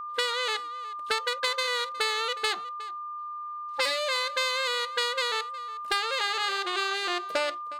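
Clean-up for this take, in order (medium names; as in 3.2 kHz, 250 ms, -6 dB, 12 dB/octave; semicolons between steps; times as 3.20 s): clip repair -15.5 dBFS; band-stop 1.2 kHz, Q 30; inverse comb 363 ms -19 dB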